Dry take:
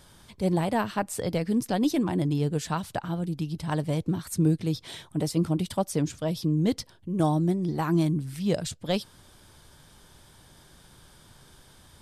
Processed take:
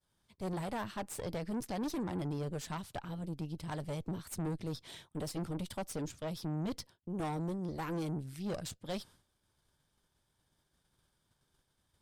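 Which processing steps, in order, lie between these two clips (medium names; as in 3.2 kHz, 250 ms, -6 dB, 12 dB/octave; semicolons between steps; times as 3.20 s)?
valve stage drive 28 dB, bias 0.75; expander -48 dBFS; trim -5 dB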